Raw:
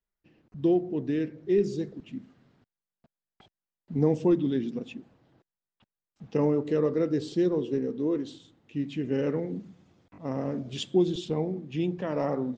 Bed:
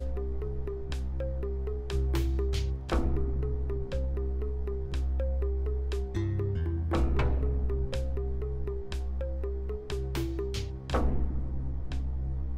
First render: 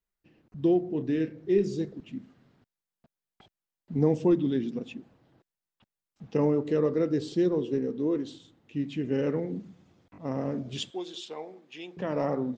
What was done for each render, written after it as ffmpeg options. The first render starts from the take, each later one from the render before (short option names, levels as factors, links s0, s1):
-filter_complex "[0:a]asettb=1/sr,asplit=3[s0][s1][s2];[s0]atrim=end=0.904[s3];[s1]atrim=start=0.9:end=1.85,asetpts=PTS-STARTPTS,afade=t=in:d=0.004:c=qsin,afade=t=out:st=0.946:d=0.004:c=qsin,asplit=2[s4][s5];[s5]adelay=31,volume=0.299[s6];[s4][s6]amix=inputs=2:normalize=0,atrim=end_sample=41895[s7];[s2]atrim=start=1.846[s8];[s3][s7]acrossfade=d=0.004:c1=hsin:c2=qsin[s9];[s9][s8]acrossfade=d=0.004:c1=qsin:c2=hsin,asettb=1/sr,asplit=3[s10][s11][s12];[s10]atrim=end=10.904[s13];[s11]atrim=start=10.9:end=11.97,asetpts=PTS-STARTPTS,afade=t=in:d=0.004:c=qsin,afade=t=out:st=1.066:d=0.004:c=qsin,highpass=760[s14];[s12]atrim=start=11.966[s15];[s13][s14]acrossfade=d=0.004:c1=hsin:c2=qsin[s16];[s16][s15]acrossfade=d=0.004:c1=qsin:c2=hsin"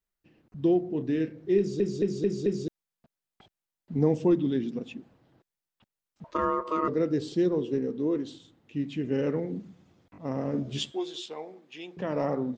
-filter_complex "[0:a]asettb=1/sr,asplit=3[s0][s1][s2];[s0]atrim=end=6.244[s3];[s1]atrim=start=6.24:end=6.88,asetpts=PTS-STARTPTS,afade=t=in:d=0.004:c=qsin,afade=t=out:st=0.636:d=0.004:c=qsin,aeval=exprs='val(0)*sin(2*PI*790*n/s)':c=same[s4];[s2]atrim=start=6.876[s5];[s3][s4]acrossfade=d=0.004:c1=hsin:c2=qsin[s6];[s6][s5]acrossfade=d=0.004:c1=qsin:c2=hsin,asettb=1/sr,asplit=3[s7][s8][s9];[s7]atrim=end=10.524[s10];[s8]atrim=start=10.52:end=11.26,asetpts=PTS-STARTPTS,afade=t=in:d=0.004:c=qsin,afade=t=out:st=0.736:d=0.004:c=qsin,asplit=2[s11][s12];[s12]adelay=14,volume=0.708[s13];[s11][s13]amix=inputs=2:normalize=0,atrim=end_sample=32634[s14];[s9]atrim=start=11.256[s15];[s10][s14]acrossfade=d=0.004:c1=hsin:c2=qsin[s16];[s16][s15]acrossfade=d=0.004:c1=qsin:c2=hsin,asplit=6[s17][s18][s19][s20][s21][s22];[s17]atrim=end=1.802[s23];[s18]atrim=start=1.578:end=1.802[s24];[s19]atrim=start=1.578:end=1.802[s25];[s20]atrim=start=1.578:end=1.802[s26];[s21]atrim=start=1.578:end=1.802[s27];[s22]atrim=start=2.678[s28];[s23][s24]acrossfade=d=0.004:c1=hsin:c2=hsin[s29];[s29][s25]acrossfade=d=0.004:c1=hsin:c2=hsin[s30];[s30][s26]acrossfade=d=0.004:c1=hsin:c2=hsin[s31];[s31][s27]acrossfade=d=0.004:c1=hsin:c2=hsin[s32];[s32][s28]acrossfade=d=0.004:c1=hsin:c2=hsin"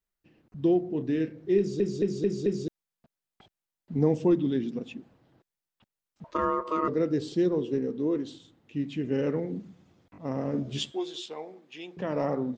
-af anull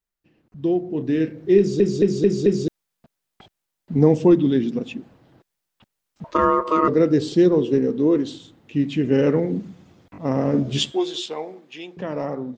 -af "dynaudnorm=f=160:g=13:m=3.16"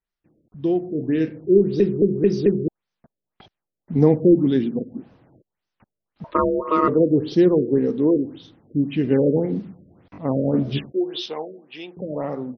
-af "afftfilt=real='re*lt(b*sr/1024,610*pow(6500/610,0.5+0.5*sin(2*PI*1.8*pts/sr)))':imag='im*lt(b*sr/1024,610*pow(6500/610,0.5+0.5*sin(2*PI*1.8*pts/sr)))':win_size=1024:overlap=0.75"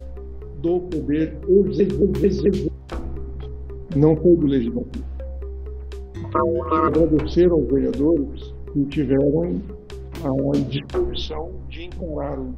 -filter_complex "[1:a]volume=0.841[s0];[0:a][s0]amix=inputs=2:normalize=0"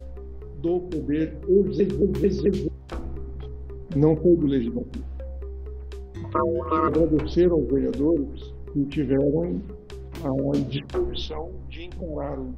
-af "volume=0.668"